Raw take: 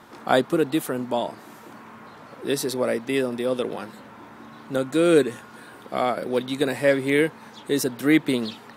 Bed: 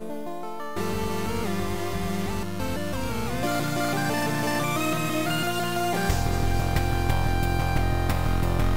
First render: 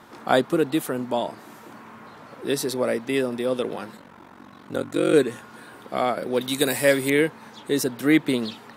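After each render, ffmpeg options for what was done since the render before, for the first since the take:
-filter_complex "[0:a]asplit=3[a][b][c];[a]afade=t=out:st=3.96:d=0.02[d];[b]aeval=exprs='val(0)*sin(2*PI*23*n/s)':c=same,afade=t=in:st=3.96:d=0.02,afade=t=out:st=5.12:d=0.02[e];[c]afade=t=in:st=5.12:d=0.02[f];[d][e][f]amix=inputs=3:normalize=0,asettb=1/sr,asplit=3[g][h][i];[g]atrim=end=6.414[j];[h]atrim=start=6.41:end=7.1,asetpts=PTS-STARTPTS,afade=t=in:d=0.004:c=qsin,afade=t=out:st=0.686:d=0.004:c=qsin,aemphasis=mode=production:type=75kf[k];[i]atrim=start=7.096[l];[j][k]acrossfade=d=0.004:c1=hsin:c2=qsin[m];[m][l]acrossfade=d=0.004:c1=qsin:c2=hsin"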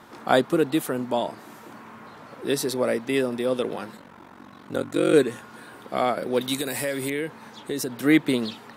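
-filter_complex "[0:a]asettb=1/sr,asplit=3[a][b][c];[a]atrim=end=6.564[d];[b]atrim=start=6.56:end=7.94,asetpts=PTS-STARTPTS,afade=t=in:d=0.004:c=qsin,afade=t=out:st=1.376:d=0.004:c=qsin,acompressor=threshold=-24dB:ratio=5:attack=3.2:release=140:knee=1:detection=peak[e];[c]atrim=start=7.936[f];[d][e]acrossfade=d=0.004:c1=hsin:c2=qsin[g];[g][f]acrossfade=d=0.004:c1=qsin:c2=hsin"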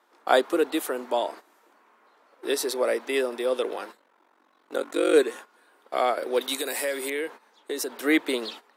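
-af "agate=range=-15dB:threshold=-38dB:ratio=16:detection=peak,highpass=f=340:w=0.5412,highpass=f=340:w=1.3066"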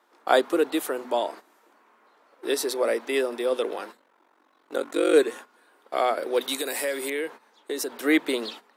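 -af "lowshelf=f=110:g=10,bandreject=f=50:t=h:w=6,bandreject=f=100:t=h:w=6,bandreject=f=150:t=h:w=6,bandreject=f=200:t=h:w=6,bandreject=f=250:t=h:w=6"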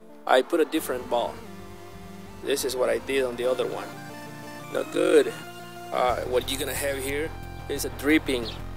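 -filter_complex "[1:a]volume=-14dB[a];[0:a][a]amix=inputs=2:normalize=0"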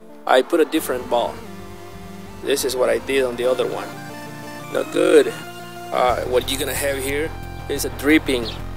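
-af "volume=6dB,alimiter=limit=-2dB:level=0:latency=1"

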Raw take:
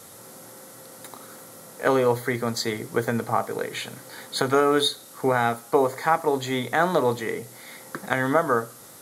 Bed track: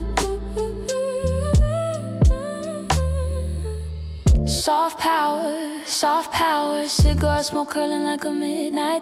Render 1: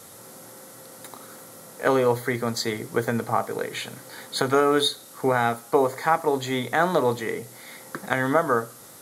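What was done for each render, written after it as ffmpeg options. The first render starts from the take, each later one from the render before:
-af anull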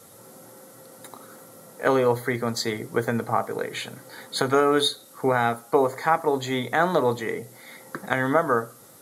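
-af "afftdn=nr=6:nf=-46"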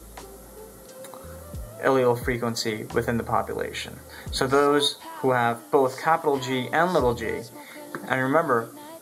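-filter_complex "[1:a]volume=-20.5dB[a];[0:a][a]amix=inputs=2:normalize=0"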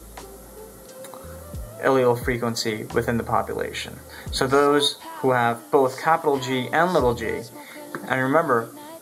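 -af "volume=2dB,alimiter=limit=-3dB:level=0:latency=1"

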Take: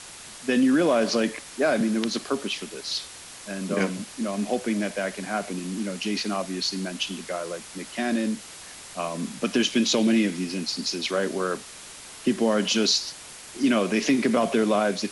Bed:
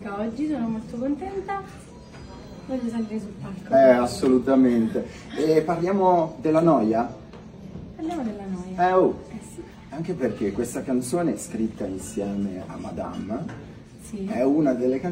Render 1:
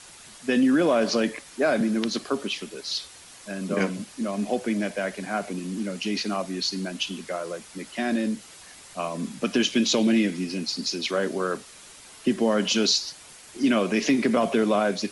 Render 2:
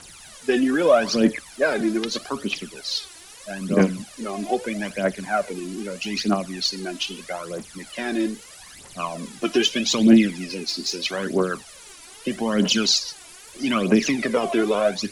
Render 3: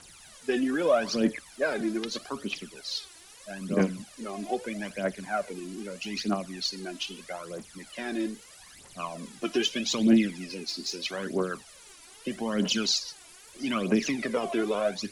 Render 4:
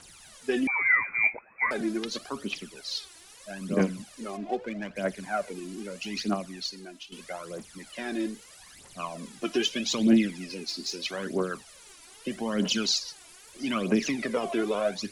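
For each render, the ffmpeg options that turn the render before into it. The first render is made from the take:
-af "afftdn=nr=6:nf=-43"
-af "aphaser=in_gain=1:out_gain=1:delay=3.1:decay=0.69:speed=0.79:type=triangular"
-af "volume=-7dB"
-filter_complex "[0:a]asettb=1/sr,asplit=3[a][b][c];[a]atrim=end=0.674[d];[b]atrim=start=0.67:end=1.71,asetpts=PTS-STARTPTS,afade=t=in:d=0.004:c=qsin,afade=t=out:st=1.036:d=0.004:c=qsin,lowpass=f=2.2k:t=q:w=0.5098,lowpass=f=2.2k:t=q:w=0.6013,lowpass=f=2.2k:t=q:w=0.9,lowpass=f=2.2k:t=q:w=2.563,afreqshift=-2600[e];[c]atrim=start=1.706[f];[d][e]acrossfade=d=0.004:c1=hsin:c2=qsin[g];[g][f]acrossfade=d=0.004:c1=qsin:c2=hsin,asplit=3[h][i][j];[h]afade=t=out:st=4.36:d=0.02[k];[i]adynamicsmooth=sensitivity=6:basefreq=2.1k,afade=t=in:st=4.36:d=0.02,afade=t=out:st=4.95:d=0.02[l];[j]afade=t=in:st=4.95:d=0.02[m];[k][l][m]amix=inputs=3:normalize=0,asplit=2[n][o];[n]atrim=end=7.12,asetpts=PTS-STARTPTS,afade=t=out:st=6.33:d=0.79:silence=0.211349[p];[o]atrim=start=7.12,asetpts=PTS-STARTPTS,afade=t=in:d=0.004:c=hsin:silence=0.211349[q];[p][q]concat=n=2:v=0:a=1"

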